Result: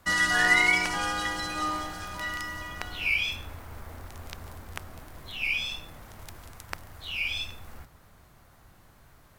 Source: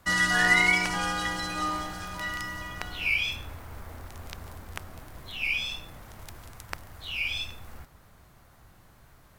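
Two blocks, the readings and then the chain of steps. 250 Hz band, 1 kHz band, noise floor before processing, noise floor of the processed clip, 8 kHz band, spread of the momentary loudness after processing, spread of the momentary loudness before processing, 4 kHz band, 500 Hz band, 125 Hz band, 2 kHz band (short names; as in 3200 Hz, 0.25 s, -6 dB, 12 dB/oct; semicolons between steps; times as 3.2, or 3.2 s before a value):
-2.0 dB, 0.0 dB, -57 dBFS, -57 dBFS, 0.0 dB, 23 LU, 23 LU, 0.0 dB, 0.0 dB, -2.5 dB, 0.0 dB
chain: notches 60/120/180 Hz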